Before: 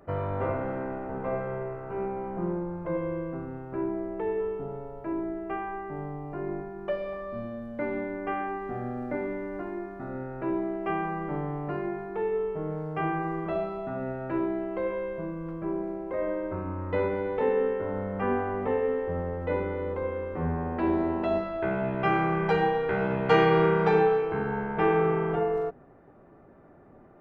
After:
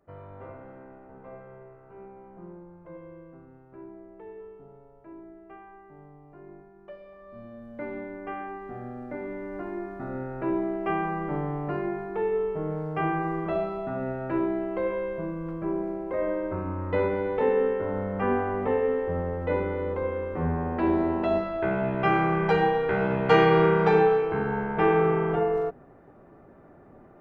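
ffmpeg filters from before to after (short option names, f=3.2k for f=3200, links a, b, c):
-af "volume=2dB,afade=t=in:st=7.14:d=0.63:silence=0.334965,afade=t=in:st=9.16:d=0.74:silence=0.473151"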